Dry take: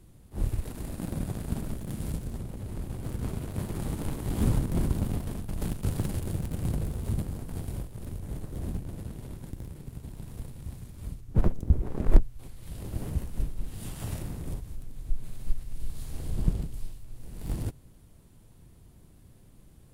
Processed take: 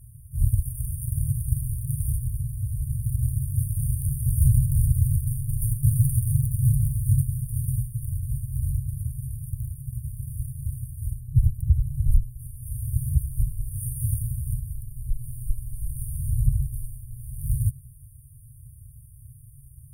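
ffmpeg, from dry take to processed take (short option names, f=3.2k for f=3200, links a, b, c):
-filter_complex "[0:a]asettb=1/sr,asplit=3[a][b][c];[a]atrim=end=5.264[d];[b]atrim=start=5.26:end=8.06,asetpts=PTS-STARTPTS,afade=t=in:d=0.004:c=qsin,afade=t=out:st=2.796:d=0.004:c=qsin,aecho=1:1:7.2:0.53,atrim=end_sample=123480[e];[c]atrim=start=8.056[f];[d][e]acrossfade=d=0.004:c1=hsin:c2=qsin[g];[g][f]acrossfade=d=0.004:c1=qsin:c2=hsin,highpass=f=89:p=1,afftfilt=real='re*(1-between(b*sr/4096,150,8700))':imag='im*(1-between(b*sr/4096,150,8700))':win_size=4096:overlap=0.75,alimiter=level_in=21.5dB:limit=-1dB:release=50:level=0:latency=1,volume=-8dB"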